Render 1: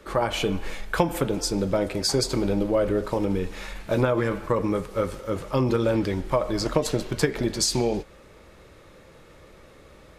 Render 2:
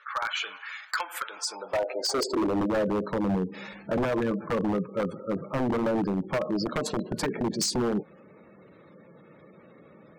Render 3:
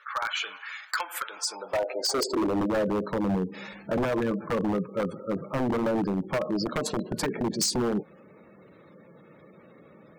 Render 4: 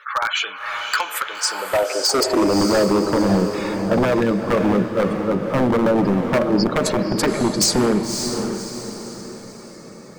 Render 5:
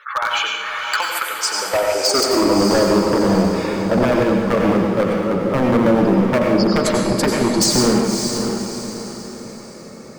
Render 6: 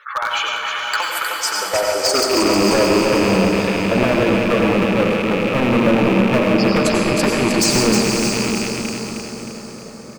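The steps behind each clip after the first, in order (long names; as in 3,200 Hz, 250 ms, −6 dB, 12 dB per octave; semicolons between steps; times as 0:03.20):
high-pass filter sweep 1,400 Hz → 180 Hz, 0:01.28–0:02.86; gate on every frequency bin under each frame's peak −20 dB strong; wave folding −17.5 dBFS; level −3 dB
high-shelf EQ 8,900 Hz +5.5 dB
feedback delay with all-pass diffusion 565 ms, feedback 44%, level −6 dB; level +8.5 dB
convolution reverb, pre-delay 83 ms, DRR 1.5 dB
loose part that buzzes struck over −27 dBFS, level −13 dBFS; repeating echo 311 ms, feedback 52%, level −5.5 dB; level −1 dB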